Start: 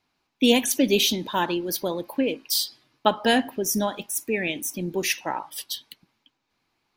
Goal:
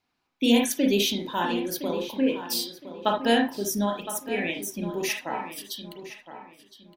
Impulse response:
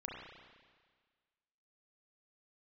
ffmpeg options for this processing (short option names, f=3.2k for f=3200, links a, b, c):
-filter_complex "[0:a]asplit=2[a][b];[b]adelay=1014,lowpass=f=3.3k:p=1,volume=-11.5dB,asplit=2[c][d];[d]adelay=1014,lowpass=f=3.3k:p=1,volume=0.28,asplit=2[e][f];[f]adelay=1014,lowpass=f=3.3k:p=1,volume=0.28[g];[a][c][e][g]amix=inputs=4:normalize=0[h];[1:a]atrim=start_sample=2205,atrim=end_sample=3528[i];[h][i]afir=irnorm=-1:irlink=0"